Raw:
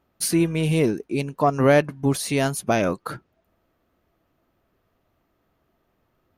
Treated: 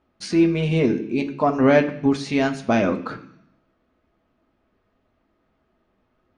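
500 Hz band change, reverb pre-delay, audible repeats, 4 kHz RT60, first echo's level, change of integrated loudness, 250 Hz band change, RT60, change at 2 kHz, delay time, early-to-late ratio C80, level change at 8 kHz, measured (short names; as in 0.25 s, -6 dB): +1.0 dB, 3 ms, none, 1.1 s, none, +1.5 dB, +3.5 dB, 0.65 s, +1.0 dB, none, 15.5 dB, -12.0 dB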